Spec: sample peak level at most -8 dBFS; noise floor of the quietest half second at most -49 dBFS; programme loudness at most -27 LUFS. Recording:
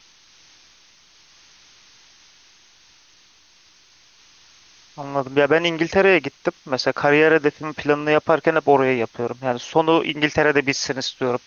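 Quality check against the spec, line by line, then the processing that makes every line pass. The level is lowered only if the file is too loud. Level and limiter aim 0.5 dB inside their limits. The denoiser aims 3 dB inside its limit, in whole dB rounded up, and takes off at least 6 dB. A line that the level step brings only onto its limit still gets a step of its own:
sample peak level -3.5 dBFS: fail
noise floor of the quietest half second -54 dBFS: OK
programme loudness -19.5 LUFS: fail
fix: gain -8 dB

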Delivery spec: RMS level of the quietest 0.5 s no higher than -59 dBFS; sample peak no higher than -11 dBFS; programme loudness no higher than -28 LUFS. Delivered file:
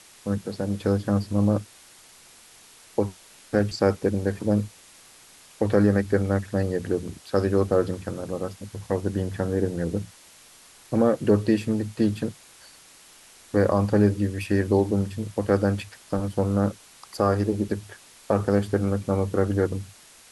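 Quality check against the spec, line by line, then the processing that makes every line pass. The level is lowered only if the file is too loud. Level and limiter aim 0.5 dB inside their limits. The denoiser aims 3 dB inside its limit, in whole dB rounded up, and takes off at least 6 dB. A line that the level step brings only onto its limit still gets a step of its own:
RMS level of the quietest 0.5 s -51 dBFS: fail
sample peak -7.5 dBFS: fail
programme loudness -25.0 LUFS: fail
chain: denoiser 8 dB, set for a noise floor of -51 dBFS; gain -3.5 dB; limiter -11.5 dBFS

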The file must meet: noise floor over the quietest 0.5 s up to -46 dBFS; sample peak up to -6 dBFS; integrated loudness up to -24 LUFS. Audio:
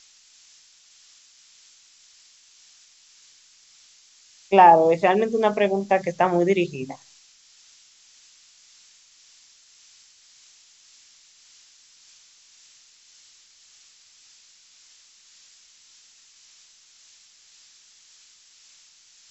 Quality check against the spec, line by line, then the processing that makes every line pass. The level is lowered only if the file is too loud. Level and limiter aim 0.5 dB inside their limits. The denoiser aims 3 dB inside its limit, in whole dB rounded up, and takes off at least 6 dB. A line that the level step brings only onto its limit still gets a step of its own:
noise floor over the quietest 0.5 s -55 dBFS: OK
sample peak -2.5 dBFS: fail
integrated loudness -19.5 LUFS: fail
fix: gain -5 dB

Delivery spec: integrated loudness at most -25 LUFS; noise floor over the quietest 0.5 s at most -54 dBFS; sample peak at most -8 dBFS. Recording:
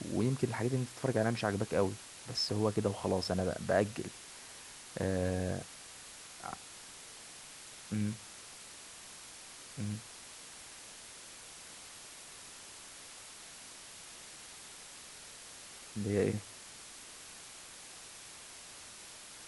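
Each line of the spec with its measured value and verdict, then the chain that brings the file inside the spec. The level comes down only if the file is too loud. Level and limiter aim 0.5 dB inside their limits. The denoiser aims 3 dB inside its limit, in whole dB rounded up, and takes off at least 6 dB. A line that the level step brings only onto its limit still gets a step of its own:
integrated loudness -39.0 LUFS: OK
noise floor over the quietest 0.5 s -51 dBFS: fail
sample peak -15.5 dBFS: OK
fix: denoiser 6 dB, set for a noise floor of -51 dBFS

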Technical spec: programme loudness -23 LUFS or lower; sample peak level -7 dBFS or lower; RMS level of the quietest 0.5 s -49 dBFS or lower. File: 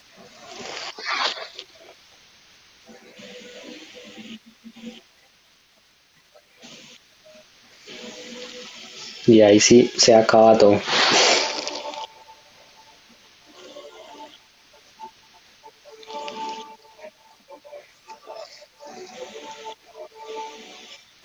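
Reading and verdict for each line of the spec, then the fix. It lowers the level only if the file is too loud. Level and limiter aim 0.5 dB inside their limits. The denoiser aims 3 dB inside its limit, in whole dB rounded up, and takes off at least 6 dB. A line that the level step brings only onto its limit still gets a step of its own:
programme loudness -17.0 LUFS: fail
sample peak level -3.5 dBFS: fail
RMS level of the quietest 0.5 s -59 dBFS: OK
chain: gain -6.5 dB

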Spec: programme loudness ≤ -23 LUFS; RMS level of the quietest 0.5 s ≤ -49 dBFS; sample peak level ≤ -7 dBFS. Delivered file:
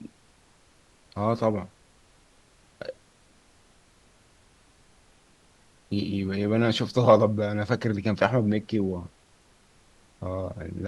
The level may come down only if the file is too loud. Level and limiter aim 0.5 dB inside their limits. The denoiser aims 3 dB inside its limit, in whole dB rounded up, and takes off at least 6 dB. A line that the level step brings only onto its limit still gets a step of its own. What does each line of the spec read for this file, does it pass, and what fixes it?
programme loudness -25.5 LUFS: OK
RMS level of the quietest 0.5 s -60 dBFS: OK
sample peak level -4.5 dBFS: fail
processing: limiter -7.5 dBFS

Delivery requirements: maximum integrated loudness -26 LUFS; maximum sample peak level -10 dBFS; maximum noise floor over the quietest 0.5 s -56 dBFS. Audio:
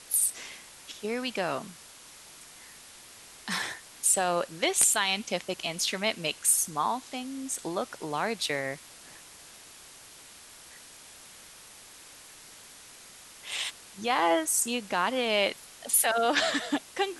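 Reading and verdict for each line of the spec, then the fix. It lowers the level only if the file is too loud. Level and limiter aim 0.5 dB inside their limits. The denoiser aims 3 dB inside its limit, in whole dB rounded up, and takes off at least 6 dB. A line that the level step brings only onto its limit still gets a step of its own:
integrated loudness -27.5 LUFS: OK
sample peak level -8.0 dBFS: fail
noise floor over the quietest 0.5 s -50 dBFS: fail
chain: denoiser 9 dB, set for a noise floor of -50 dBFS; limiter -10.5 dBFS

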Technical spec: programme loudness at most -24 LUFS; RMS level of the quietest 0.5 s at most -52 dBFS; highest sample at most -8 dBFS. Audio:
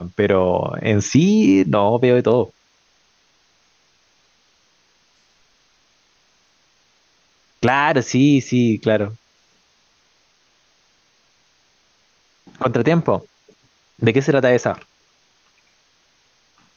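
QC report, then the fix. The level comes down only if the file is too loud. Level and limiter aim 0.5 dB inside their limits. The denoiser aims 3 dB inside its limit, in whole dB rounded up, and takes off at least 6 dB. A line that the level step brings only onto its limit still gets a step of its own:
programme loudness -17.0 LUFS: fail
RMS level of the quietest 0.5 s -60 dBFS: OK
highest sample -3.0 dBFS: fail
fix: gain -7.5 dB

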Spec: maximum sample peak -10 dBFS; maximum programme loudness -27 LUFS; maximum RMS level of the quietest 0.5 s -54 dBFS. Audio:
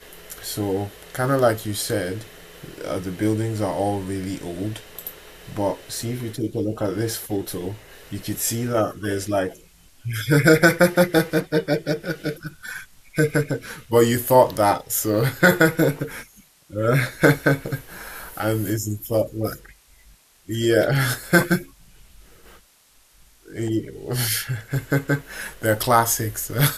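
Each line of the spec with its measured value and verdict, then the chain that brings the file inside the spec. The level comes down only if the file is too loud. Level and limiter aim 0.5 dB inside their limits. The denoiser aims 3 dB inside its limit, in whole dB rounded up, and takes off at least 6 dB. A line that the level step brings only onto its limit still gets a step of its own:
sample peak -3.0 dBFS: fail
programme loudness -22.0 LUFS: fail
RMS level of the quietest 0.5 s -56 dBFS: OK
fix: gain -5.5 dB; limiter -10.5 dBFS

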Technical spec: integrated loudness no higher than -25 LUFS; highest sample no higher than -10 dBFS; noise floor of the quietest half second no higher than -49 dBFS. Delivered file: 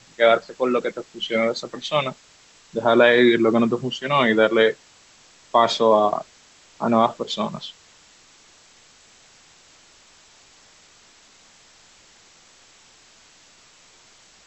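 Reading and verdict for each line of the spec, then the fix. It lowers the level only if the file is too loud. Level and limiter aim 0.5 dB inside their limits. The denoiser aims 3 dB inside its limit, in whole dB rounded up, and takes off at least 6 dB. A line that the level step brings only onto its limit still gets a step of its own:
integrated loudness -20.0 LUFS: fail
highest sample -4.5 dBFS: fail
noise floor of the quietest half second -53 dBFS: OK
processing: gain -5.5 dB; limiter -10.5 dBFS

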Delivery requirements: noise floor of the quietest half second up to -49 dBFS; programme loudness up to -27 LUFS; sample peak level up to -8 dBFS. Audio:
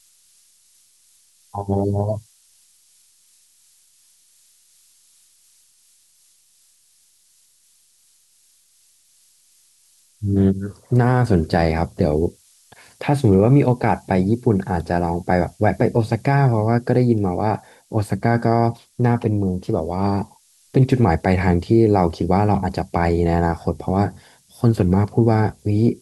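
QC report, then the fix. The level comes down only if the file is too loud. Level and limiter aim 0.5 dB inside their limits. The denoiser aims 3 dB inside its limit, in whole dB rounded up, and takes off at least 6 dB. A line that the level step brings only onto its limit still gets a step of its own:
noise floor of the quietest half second -58 dBFS: OK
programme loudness -19.5 LUFS: fail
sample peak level -4.5 dBFS: fail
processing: gain -8 dB

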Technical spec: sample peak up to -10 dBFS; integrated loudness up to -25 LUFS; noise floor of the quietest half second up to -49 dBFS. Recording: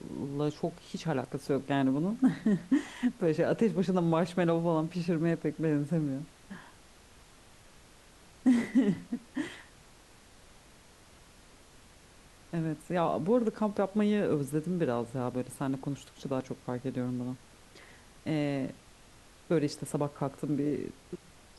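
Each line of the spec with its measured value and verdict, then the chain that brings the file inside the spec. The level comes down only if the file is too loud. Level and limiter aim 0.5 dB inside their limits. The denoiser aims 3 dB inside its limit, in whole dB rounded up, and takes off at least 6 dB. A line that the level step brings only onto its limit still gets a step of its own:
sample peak -15.5 dBFS: OK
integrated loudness -31.5 LUFS: OK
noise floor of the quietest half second -57 dBFS: OK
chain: none

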